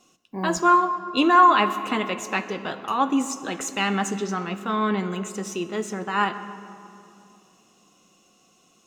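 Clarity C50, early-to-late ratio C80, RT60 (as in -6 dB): 11.5 dB, 12.5 dB, 2.7 s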